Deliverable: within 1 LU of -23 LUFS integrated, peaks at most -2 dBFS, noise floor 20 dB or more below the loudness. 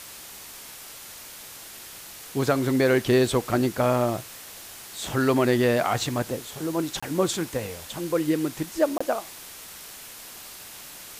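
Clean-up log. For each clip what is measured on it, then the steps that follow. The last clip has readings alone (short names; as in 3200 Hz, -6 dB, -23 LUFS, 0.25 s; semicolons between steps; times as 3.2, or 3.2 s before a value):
dropouts 2; longest dropout 25 ms; noise floor -43 dBFS; noise floor target -45 dBFS; loudness -25.0 LUFS; peak -10.5 dBFS; loudness target -23.0 LUFS
-> interpolate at 7/8.98, 25 ms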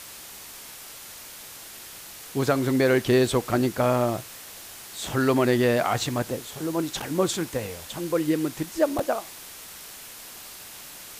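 dropouts 0; noise floor -43 dBFS; noise floor target -45 dBFS
-> denoiser 6 dB, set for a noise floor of -43 dBFS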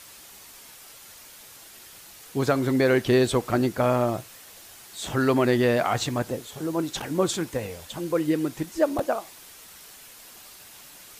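noise floor -48 dBFS; loudness -25.0 LUFS; peak -10.5 dBFS; loudness target -23.0 LUFS
-> gain +2 dB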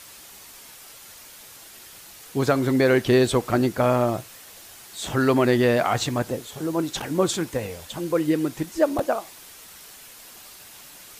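loudness -23.0 LUFS; peak -8.5 dBFS; noise floor -46 dBFS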